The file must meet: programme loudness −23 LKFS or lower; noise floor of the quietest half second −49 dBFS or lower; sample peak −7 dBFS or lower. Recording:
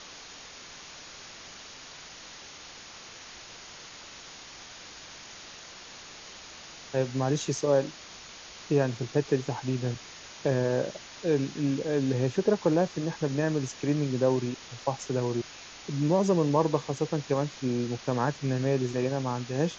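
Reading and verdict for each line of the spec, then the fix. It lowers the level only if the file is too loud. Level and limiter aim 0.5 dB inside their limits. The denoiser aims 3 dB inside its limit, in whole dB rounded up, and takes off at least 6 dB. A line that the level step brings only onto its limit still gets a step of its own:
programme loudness −28.5 LKFS: in spec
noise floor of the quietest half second −46 dBFS: out of spec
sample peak −10.5 dBFS: in spec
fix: broadband denoise 6 dB, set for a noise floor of −46 dBFS

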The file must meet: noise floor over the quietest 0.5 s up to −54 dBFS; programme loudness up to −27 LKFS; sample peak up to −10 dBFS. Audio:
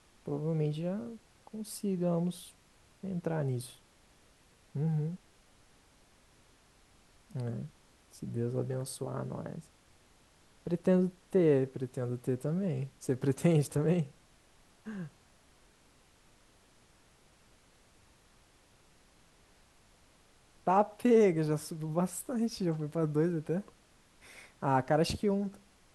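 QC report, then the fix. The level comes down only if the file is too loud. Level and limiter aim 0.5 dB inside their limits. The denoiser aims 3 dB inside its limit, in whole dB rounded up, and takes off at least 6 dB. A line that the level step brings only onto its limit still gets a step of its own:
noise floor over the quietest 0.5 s −64 dBFS: in spec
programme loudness −32.5 LKFS: in spec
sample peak −14.0 dBFS: in spec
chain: no processing needed

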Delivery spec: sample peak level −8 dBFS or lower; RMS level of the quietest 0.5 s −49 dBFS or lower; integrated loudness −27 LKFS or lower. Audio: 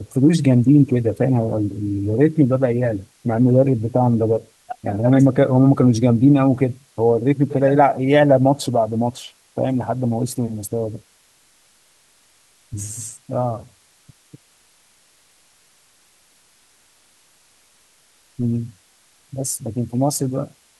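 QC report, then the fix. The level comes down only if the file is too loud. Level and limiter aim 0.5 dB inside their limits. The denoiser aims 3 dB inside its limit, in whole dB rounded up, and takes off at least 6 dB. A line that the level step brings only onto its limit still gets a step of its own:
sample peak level −3.5 dBFS: out of spec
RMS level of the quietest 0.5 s −57 dBFS: in spec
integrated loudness −18.0 LKFS: out of spec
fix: level −9.5 dB

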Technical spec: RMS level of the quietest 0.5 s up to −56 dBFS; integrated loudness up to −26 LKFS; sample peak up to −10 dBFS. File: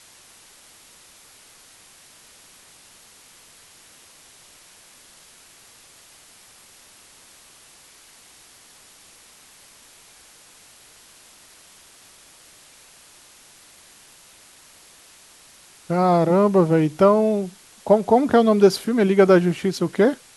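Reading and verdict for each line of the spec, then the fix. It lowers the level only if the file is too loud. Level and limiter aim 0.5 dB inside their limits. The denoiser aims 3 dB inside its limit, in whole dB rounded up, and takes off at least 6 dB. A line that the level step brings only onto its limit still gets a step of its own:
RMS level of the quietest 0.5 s −50 dBFS: out of spec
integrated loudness −18.0 LKFS: out of spec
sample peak −3.0 dBFS: out of spec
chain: level −8.5 dB

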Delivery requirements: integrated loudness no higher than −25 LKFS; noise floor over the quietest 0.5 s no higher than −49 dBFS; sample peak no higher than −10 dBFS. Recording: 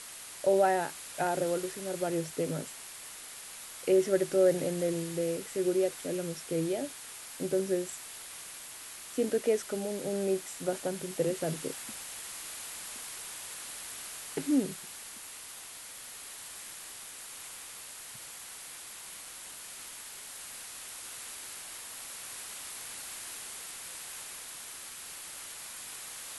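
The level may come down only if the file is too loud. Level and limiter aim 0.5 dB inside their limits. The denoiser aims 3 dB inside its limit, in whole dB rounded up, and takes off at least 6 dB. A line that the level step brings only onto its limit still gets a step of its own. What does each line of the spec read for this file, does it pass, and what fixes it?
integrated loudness −34.5 LKFS: in spec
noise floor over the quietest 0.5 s −46 dBFS: out of spec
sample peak −14.0 dBFS: in spec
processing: broadband denoise 6 dB, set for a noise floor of −46 dBFS

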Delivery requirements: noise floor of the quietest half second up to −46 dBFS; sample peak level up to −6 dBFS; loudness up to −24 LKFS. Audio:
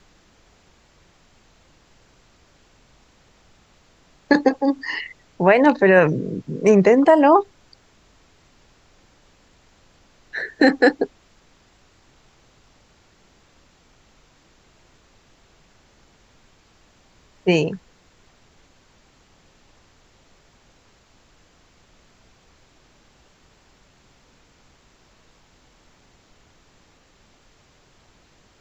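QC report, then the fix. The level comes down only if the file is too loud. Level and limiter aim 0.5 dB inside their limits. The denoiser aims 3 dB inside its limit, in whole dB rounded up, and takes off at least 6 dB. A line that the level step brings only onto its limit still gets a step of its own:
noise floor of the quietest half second −56 dBFS: in spec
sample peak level −3.5 dBFS: out of spec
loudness −17.5 LKFS: out of spec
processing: level −7 dB

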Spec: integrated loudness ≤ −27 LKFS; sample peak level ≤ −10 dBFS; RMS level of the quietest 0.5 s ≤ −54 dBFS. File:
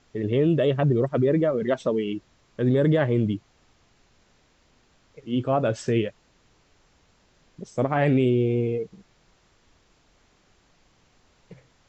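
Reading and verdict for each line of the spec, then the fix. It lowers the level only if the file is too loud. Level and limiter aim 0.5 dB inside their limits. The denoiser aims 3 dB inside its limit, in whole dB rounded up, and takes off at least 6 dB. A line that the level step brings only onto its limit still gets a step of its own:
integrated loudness −24.0 LKFS: out of spec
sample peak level −11.0 dBFS: in spec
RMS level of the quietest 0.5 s −62 dBFS: in spec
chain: level −3.5 dB

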